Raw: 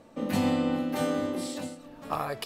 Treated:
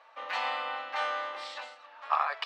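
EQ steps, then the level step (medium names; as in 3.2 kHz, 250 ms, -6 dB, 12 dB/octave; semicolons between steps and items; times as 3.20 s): high-pass 920 Hz 24 dB/octave; distance through air 210 m; treble shelf 5.2 kHz -7 dB; +8.5 dB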